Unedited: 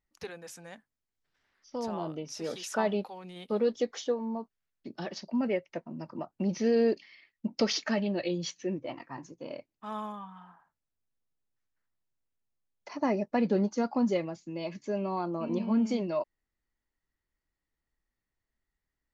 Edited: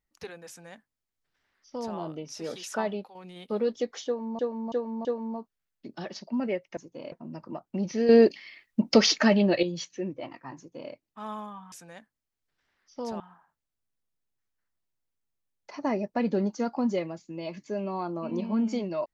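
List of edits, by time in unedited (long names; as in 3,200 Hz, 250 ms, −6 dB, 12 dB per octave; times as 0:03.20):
0:00.48–0:01.96: duplicate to 0:10.38
0:02.75–0:03.15: fade out, to −9 dB
0:04.06–0:04.39: repeat, 4 plays
0:06.75–0:08.29: clip gain +8.5 dB
0:09.23–0:09.58: duplicate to 0:05.78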